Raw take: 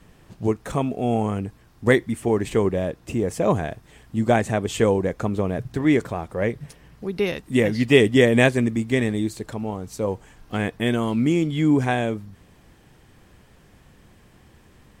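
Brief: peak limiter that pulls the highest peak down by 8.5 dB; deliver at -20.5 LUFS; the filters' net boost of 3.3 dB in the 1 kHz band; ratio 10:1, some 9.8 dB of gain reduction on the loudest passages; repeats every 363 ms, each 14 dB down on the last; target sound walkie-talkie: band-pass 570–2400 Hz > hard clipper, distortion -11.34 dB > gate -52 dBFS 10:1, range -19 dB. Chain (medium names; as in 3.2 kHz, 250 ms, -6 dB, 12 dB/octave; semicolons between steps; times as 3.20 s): peaking EQ 1 kHz +6 dB; compression 10:1, threshold -19 dBFS; peak limiter -18 dBFS; band-pass 570–2400 Hz; feedback delay 363 ms, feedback 20%, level -14 dB; hard clipper -29 dBFS; gate -52 dBFS 10:1, range -19 dB; trim +16.5 dB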